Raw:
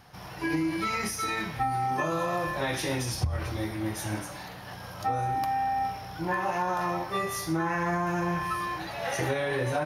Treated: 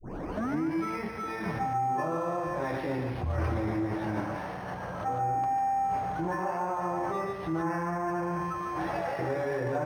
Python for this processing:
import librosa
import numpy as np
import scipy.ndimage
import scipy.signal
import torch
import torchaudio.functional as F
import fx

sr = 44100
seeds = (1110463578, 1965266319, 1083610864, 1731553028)

p1 = fx.tape_start_head(x, sr, length_s=0.6)
p2 = fx.low_shelf(p1, sr, hz=170.0, db=-9.0)
p3 = fx.over_compress(p2, sr, threshold_db=-37.0, ratio=-0.5)
p4 = p2 + F.gain(torch.from_numpy(p3), 0.0).numpy()
p5 = fx.spacing_loss(p4, sr, db_at_10k=40)
p6 = p5 + fx.echo_single(p5, sr, ms=146, db=-6.5, dry=0)
y = np.interp(np.arange(len(p6)), np.arange(len(p6))[::6], p6[::6])